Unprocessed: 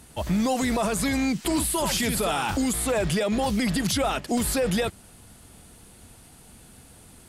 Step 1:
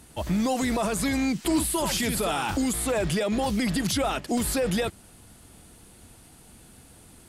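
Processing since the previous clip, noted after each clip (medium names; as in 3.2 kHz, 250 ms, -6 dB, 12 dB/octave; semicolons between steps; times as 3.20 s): peaking EQ 320 Hz +3.5 dB 0.3 oct; trim -1.5 dB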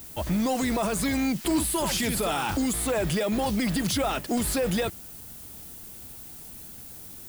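in parallel at -7.5 dB: hard clipper -30 dBFS, distortion -8 dB; on the sum: added noise violet -42 dBFS; trim -2 dB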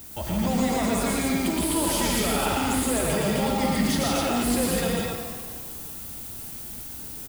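peak limiter -23 dBFS, peak gain reduction 6 dB; on a send: loudspeakers at several distances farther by 40 m -2 dB, 57 m -3 dB, 88 m -2 dB; on the sum: pitch-shifted reverb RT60 1.6 s, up +7 st, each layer -8 dB, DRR 5 dB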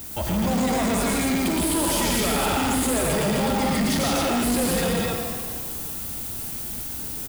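saturation -24.5 dBFS, distortion -11 dB; trim +6 dB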